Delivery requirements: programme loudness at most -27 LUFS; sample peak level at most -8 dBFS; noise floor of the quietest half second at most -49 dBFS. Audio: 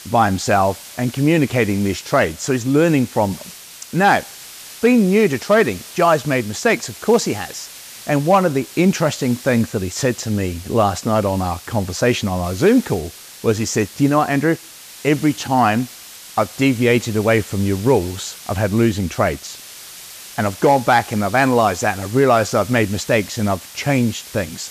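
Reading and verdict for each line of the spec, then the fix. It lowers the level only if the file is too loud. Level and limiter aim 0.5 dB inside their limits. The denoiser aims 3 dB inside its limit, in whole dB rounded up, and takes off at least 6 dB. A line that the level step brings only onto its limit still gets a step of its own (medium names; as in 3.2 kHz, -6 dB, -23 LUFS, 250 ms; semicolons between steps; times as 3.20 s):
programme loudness -18.0 LUFS: fail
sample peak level -4.0 dBFS: fail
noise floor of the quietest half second -38 dBFS: fail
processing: noise reduction 6 dB, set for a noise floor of -38 dBFS; trim -9.5 dB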